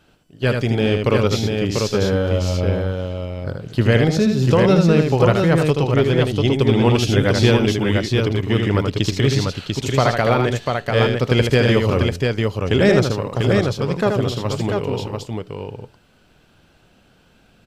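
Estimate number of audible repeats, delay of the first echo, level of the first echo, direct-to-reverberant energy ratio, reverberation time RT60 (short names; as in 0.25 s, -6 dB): 2, 78 ms, -5.0 dB, none, none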